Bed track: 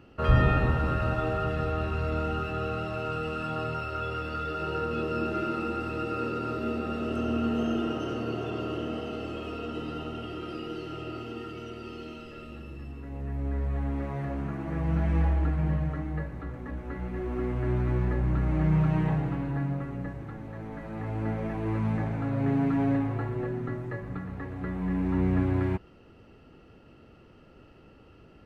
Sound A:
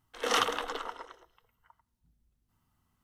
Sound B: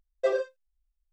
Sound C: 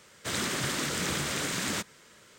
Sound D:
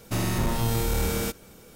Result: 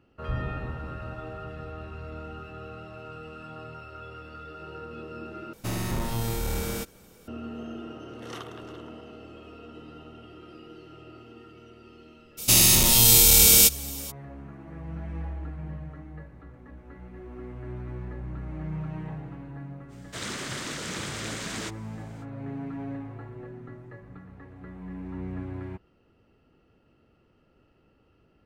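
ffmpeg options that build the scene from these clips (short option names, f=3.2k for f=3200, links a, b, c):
-filter_complex "[4:a]asplit=2[a][b];[0:a]volume=-10dB[c];[1:a]aecho=1:1:347:0.133[d];[b]aexciter=amount=8.1:drive=2.6:freq=2.4k[e];[3:a]acrossover=split=9800[f][g];[g]acompressor=threshold=-54dB:ratio=4:attack=1:release=60[h];[f][h]amix=inputs=2:normalize=0[i];[c]asplit=2[j][k];[j]atrim=end=5.534[l];[a]atrim=end=1.75,asetpts=PTS-STARTPTS,volume=-4dB[m];[k]atrim=start=7.276[n];[d]atrim=end=3.03,asetpts=PTS-STARTPTS,volume=-15dB,afade=t=in:d=0.004:c=hsin,afade=t=out:st=3.026:d=0.004:c=hsin,adelay=7990[o];[e]atrim=end=1.75,asetpts=PTS-STARTPTS,afade=t=in:d=0.02,afade=t=out:st=1.73:d=0.02,adelay=12370[p];[i]atrim=end=2.38,asetpts=PTS-STARTPTS,volume=-3.5dB,afade=t=in:d=0.05,afade=t=out:st=2.33:d=0.05,adelay=876708S[q];[l][m]acrossfade=d=0.004:c1=hsin:c2=hsin[r];[r][n]acrossfade=d=0.004:c1=hsin:c2=hsin[s];[s][o][p][q]amix=inputs=4:normalize=0"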